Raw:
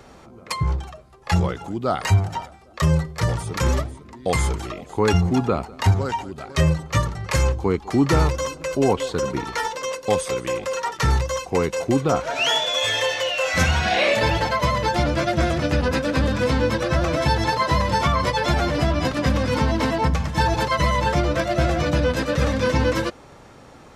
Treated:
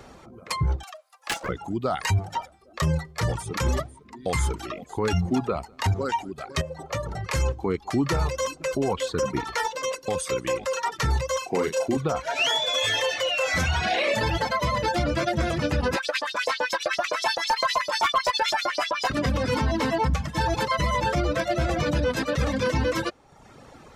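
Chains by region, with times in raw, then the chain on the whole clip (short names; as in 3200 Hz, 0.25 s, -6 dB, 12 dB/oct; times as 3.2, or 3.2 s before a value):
0.83–1.49 steep high-pass 510 Hz 96 dB/oct + tilt +2.5 dB/oct + Doppler distortion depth 0.46 ms
6.61–7.23 bell 590 Hz +11.5 dB 0.83 oct + compressor 8:1, threshold -24 dBFS
11.38–11.97 HPF 160 Hz + doubler 38 ms -4 dB
15.96–19.1 LFO high-pass saw up 7.8 Hz 540–6400 Hz + overloaded stage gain 15 dB
whole clip: reverb removal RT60 0.79 s; limiter -15.5 dBFS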